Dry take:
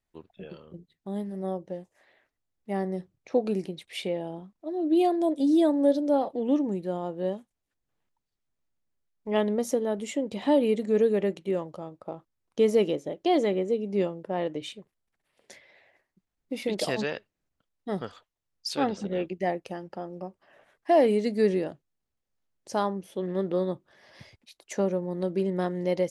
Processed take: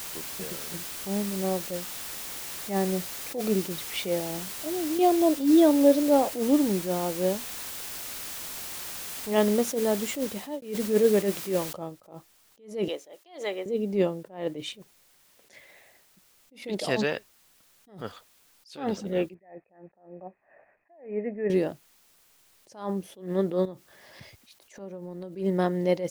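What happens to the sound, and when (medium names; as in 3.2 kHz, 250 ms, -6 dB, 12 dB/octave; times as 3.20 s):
4.19–4.99 s: compression, threshold -31 dBFS
6.20–7.06 s: median filter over 5 samples
10.20–10.62 s: fade out linear
11.73 s: noise floor step -41 dB -65 dB
12.88–13.66 s: Bessel high-pass 820 Hz
19.34–21.50 s: rippled Chebyshev low-pass 2.6 kHz, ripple 9 dB
23.65–25.36 s: compression 10:1, threshold -38 dBFS
whole clip: attacks held to a fixed rise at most 140 dB/s; trim +3.5 dB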